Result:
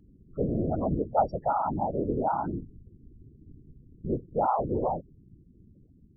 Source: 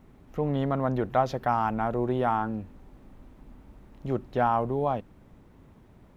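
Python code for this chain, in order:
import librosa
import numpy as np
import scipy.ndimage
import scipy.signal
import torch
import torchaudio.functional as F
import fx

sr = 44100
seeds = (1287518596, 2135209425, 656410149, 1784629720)

y = fx.spec_topn(x, sr, count=8)
y = fx.whisperise(y, sr, seeds[0])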